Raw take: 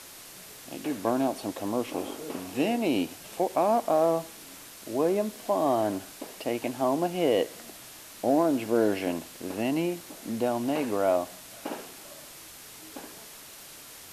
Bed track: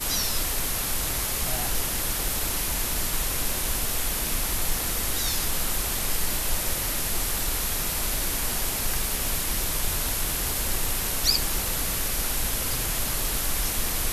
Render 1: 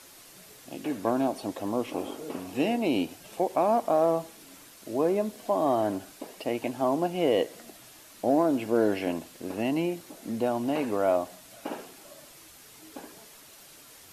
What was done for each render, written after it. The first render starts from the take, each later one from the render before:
broadband denoise 6 dB, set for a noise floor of −47 dBFS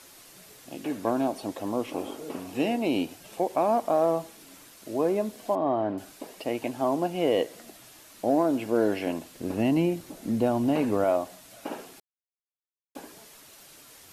0:05.55–0:05.98: high-frequency loss of the air 360 metres
0:09.36–0:11.04: low-shelf EQ 230 Hz +11 dB
0:12.00–0:12.95: silence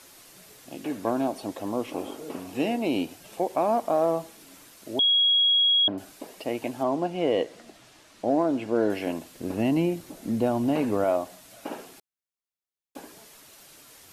0:04.99–0:05.88: beep over 3,310 Hz −17.5 dBFS
0:06.83–0:08.90: high-frequency loss of the air 60 metres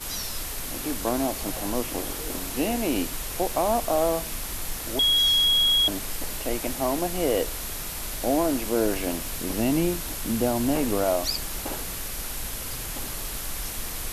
mix in bed track −6 dB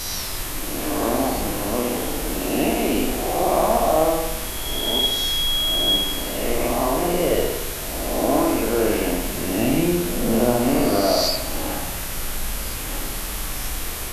peak hold with a rise ahead of every peak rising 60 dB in 1.41 s
spring reverb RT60 1 s, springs 57 ms, chirp 70 ms, DRR 0.5 dB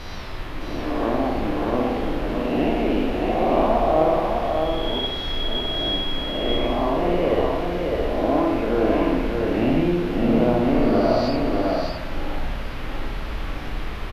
high-frequency loss of the air 340 metres
single-tap delay 610 ms −3.5 dB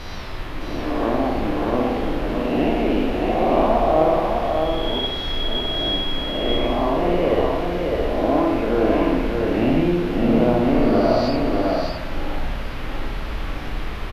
level +1.5 dB

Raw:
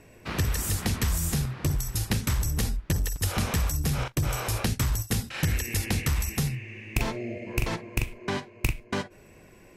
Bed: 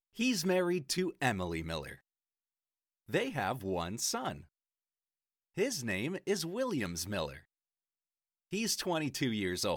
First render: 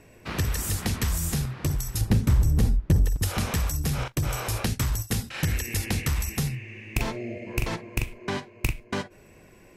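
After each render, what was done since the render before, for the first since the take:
0:02.01–0:03.23: tilt shelving filter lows +7 dB, about 830 Hz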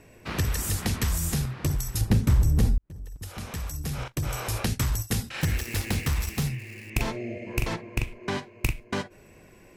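0:02.78–0:04.74: fade in
0:05.41–0:06.90: gap after every zero crossing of 0.063 ms
0:07.73–0:08.23: high-shelf EQ 7,200 Hz −8 dB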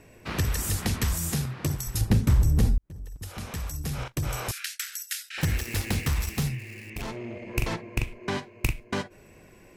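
0:01.13–0:01.87: high-pass filter 87 Hz
0:04.51–0:05.38: Butterworth high-pass 1,400 Hz 72 dB per octave
0:06.93–0:07.55: tube saturation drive 30 dB, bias 0.4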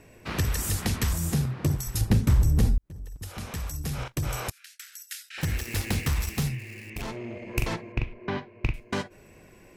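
0:01.13–0:01.81: tilt shelving filter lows +3.5 dB, about 910 Hz
0:04.50–0:05.82: fade in, from −23.5 dB
0:07.92–0:08.74: high-frequency loss of the air 250 metres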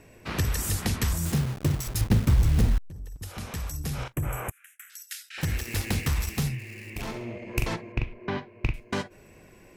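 0:01.25–0:02.90: hold until the input has moved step −32.5 dBFS
0:04.13–0:04.90: Butterworth band-reject 4,600 Hz, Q 0.8
0:06.74–0:07.36: flutter between parallel walls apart 11.6 metres, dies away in 0.51 s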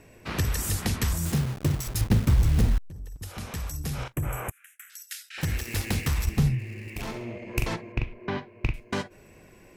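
0:06.25–0:06.88: spectral tilt −2 dB per octave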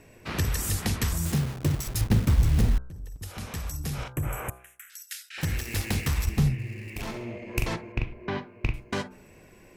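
hum removal 63.15 Hz, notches 25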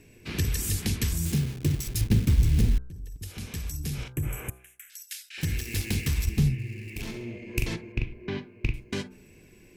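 flat-topped bell 880 Hz −10.5 dB
notch filter 1,900 Hz, Q 13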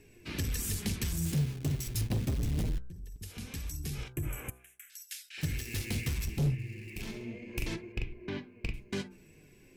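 hard clipping −23 dBFS, distortion −9 dB
flanger 0.25 Hz, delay 2.3 ms, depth 6.2 ms, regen +59%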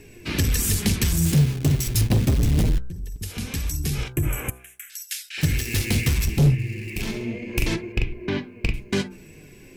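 level +12 dB

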